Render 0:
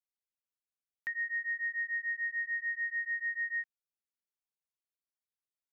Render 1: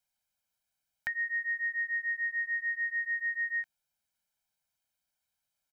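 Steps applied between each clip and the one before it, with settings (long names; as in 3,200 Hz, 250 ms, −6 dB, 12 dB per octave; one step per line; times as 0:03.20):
comb filter 1.3 ms, depth 87%
level +7.5 dB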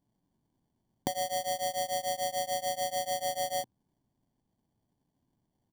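sample-rate reduction 1,300 Hz, jitter 0%
graphic EQ with 10 bands 125 Hz +7 dB, 250 Hz +6 dB, 500 Hz −9 dB, 1,000 Hz +4 dB, 2,000 Hz −11 dB
level +4.5 dB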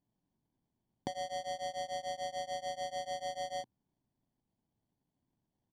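low-pass filter 5,200 Hz 12 dB per octave
level −6 dB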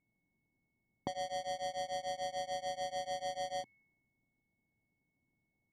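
steady tone 2,200 Hz −68 dBFS
low-pass that shuts in the quiet parts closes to 830 Hz, open at −35.5 dBFS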